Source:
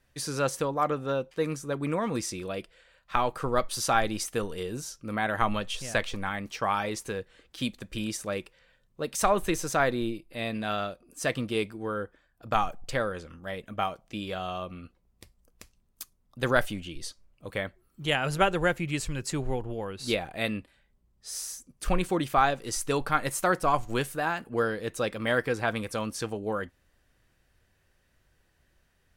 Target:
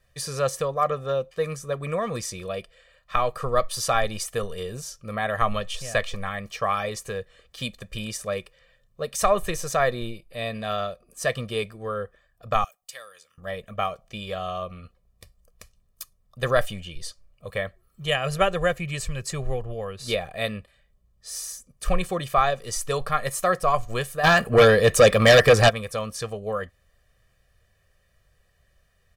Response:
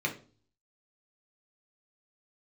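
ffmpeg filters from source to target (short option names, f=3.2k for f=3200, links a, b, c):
-filter_complex "[0:a]asettb=1/sr,asplit=3[a][b][c];[a]atrim=end=12.644[d];[b]atrim=start=12.64:end=13.38,asetpts=PTS-STARTPTS,afade=t=in:d=0.004:c=qsin,afade=t=out:st=0.736:d=0.004:c=qsin,aderivative[e];[c]atrim=start=13.376[f];[d][e]acrossfade=d=0.004:c1=hsin:c2=qsin[g];[g][f]acrossfade=d=0.004:c1=qsin:c2=hsin,asplit=3[h][i][j];[h]afade=t=out:st=24.23:d=0.02[k];[i]aeval=exprs='0.266*sin(PI/2*3.55*val(0)/0.266)':c=same,afade=t=in:st=24.23:d=0.02,afade=t=out:st=25.68:d=0.02[l];[j]afade=t=in:st=25.68:d=0.02[m];[k][l][m]amix=inputs=3:normalize=0,aecho=1:1:1.7:0.82"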